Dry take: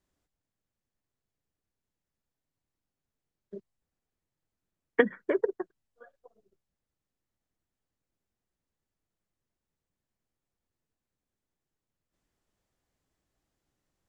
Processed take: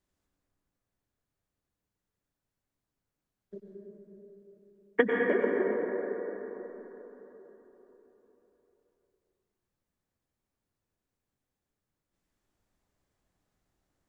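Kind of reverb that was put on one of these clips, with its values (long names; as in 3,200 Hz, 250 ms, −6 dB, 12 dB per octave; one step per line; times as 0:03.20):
dense smooth reverb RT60 4.2 s, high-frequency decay 0.3×, pre-delay 85 ms, DRR −2 dB
level −2 dB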